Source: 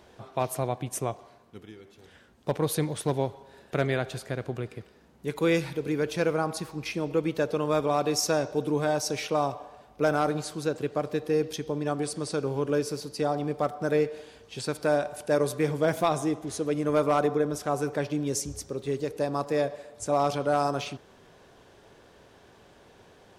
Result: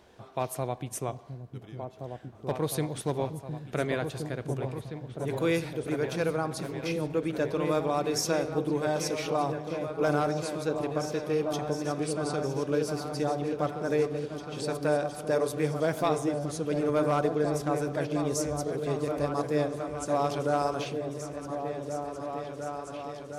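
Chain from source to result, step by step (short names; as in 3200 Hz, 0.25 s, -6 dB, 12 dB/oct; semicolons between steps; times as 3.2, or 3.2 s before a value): repeats that get brighter 0.711 s, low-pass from 200 Hz, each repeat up 2 oct, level -3 dB; gain -3 dB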